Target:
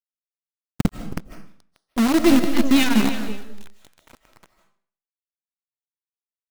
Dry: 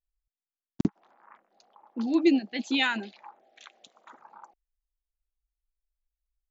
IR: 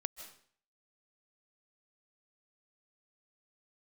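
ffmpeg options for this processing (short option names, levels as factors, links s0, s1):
-filter_complex "[0:a]asubboost=boost=11.5:cutoff=230,asplit=2[s0][s1];[s1]asoftclip=type=tanh:threshold=0.168,volume=0.501[s2];[s0][s2]amix=inputs=2:normalize=0,aeval=exprs='0.708*(cos(1*acos(clip(val(0)/0.708,-1,1)))-cos(1*PI/2))+0.141*(cos(2*acos(clip(val(0)/0.708,-1,1)))-cos(2*PI/2))':c=same,aphaser=in_gain=1:out_gain=1:delay=1.4:decay=0.34:speed=0.65:type=sinusoidal,aecho=1:1:321:0.355,acrusher=bits=4:dc=4:mix=0:aa=0.000001[s3];[1:a]atrim=start_sample=2205[s4];[s3][s4]afir=irnorm=-1:irlink=0"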